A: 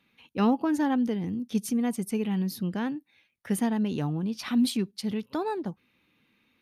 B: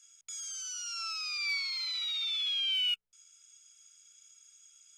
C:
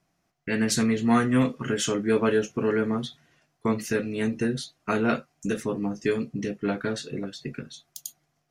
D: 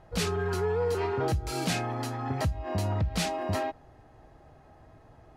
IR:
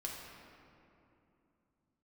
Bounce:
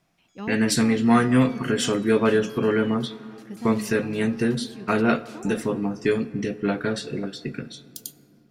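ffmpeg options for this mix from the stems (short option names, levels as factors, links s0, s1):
-filter_complex "[0:a]deesser=0.75,volume=0.282[s0];[1:a]lowpass=3100,volume=0.178[s1];[2:a]bandreject=f=6500:w=7.2,volume=1.26,asplit=2[s2][s3];[s3]volume=0.237[s4];[3:a]highpass=1200,acompressor=threshold=0.00631:ratio=2.5,adelay=2100,volume=0.376[s5];[4:a]atrim=start_sample=2205[s6];[s4][s6]afir=irnorm=-1:irlink=0[s7];[s0][s1][s2][s5][s7]amix=inputs=5:normalize=0"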